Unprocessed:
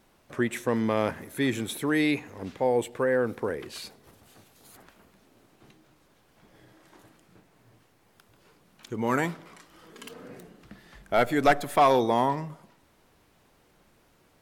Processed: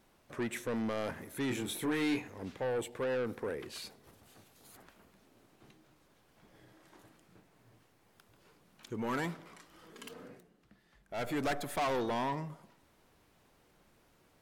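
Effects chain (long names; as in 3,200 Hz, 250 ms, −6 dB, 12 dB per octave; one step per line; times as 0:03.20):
soft clipping −25 dBFS, distortion −8 dB
0:01.48–0:02.28: double-tracking delay 24 ms −4.5 dB
0:10.22–0:11.29: duck −11 dB, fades 0.21 s
level −4.5 dB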